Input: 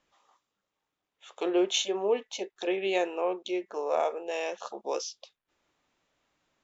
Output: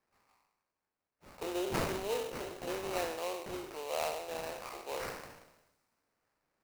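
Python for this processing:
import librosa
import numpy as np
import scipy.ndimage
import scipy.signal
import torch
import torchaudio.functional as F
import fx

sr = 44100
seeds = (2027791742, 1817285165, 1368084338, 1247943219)

y = fx.spec_trails(x, sr, decay_s=0.98)
y = fx.low_shelf(y, sr, hz=430.0, db=-8.5)
y = fx.sample_hold(y, sr, seeds[0], rate_hz=3400.0, jitter_pct=20)
y = fx.echo_wet_highpass(y, sr, ms=84, feedback_pct=76, hz=5000.0, wet_db=-20)
y = F.gain(torch.from_numpy(y), -7.0).numpy()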